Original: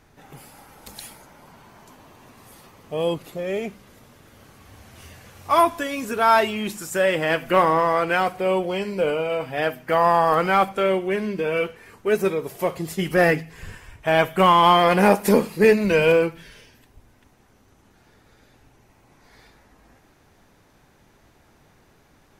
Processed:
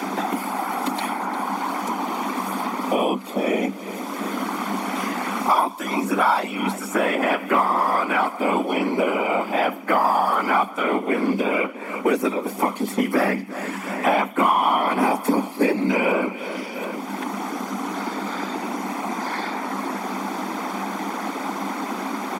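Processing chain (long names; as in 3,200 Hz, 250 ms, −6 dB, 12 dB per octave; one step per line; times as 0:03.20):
comb filter 0.9 ms, depth 60%
random phases in short frames
Chebyshev high-pass with heavy ripple 190 Hz, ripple 6 dB
on a send: repeating echo 350 ms, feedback 30%, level −19.5 dB
on the sum: multiband upward and downward compressor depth 100%
level +4 dB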